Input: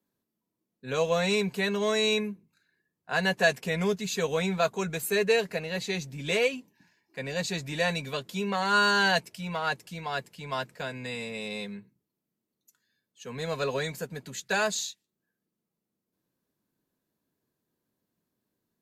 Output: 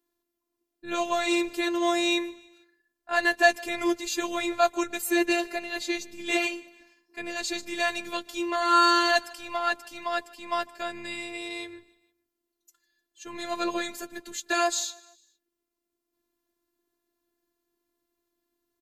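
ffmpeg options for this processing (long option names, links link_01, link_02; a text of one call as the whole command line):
ffmpeg -i in.wav -af "aecho=1:1:152|304|456:0.0668|0.0334|0.0167,afftfilt=real='hypot(re,im)*cos(PI*b)':imag='0':win_size=512:overlap=0.75,volume=5.5dB" out.wav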